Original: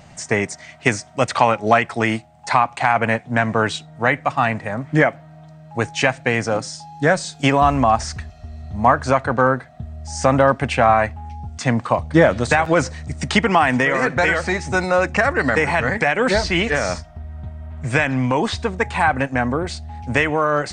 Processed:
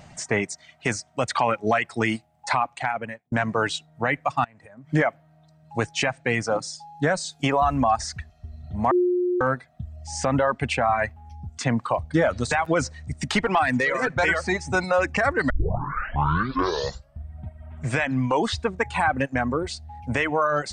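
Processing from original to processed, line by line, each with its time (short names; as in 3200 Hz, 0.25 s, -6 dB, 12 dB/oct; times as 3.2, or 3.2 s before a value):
2.53–3.32 fade out
4.44–4.92 compressor 8:1, threshold -35 dBFS
8.91–9.41 bleep 358 Hz -13 dBFS
13.21–14.23 tube stage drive 7 dB, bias 0.35
15.5 tape start 1.77 s
whole clip: reverb removal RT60 1.3 s; limiter -9 dBFS; gain -2 dB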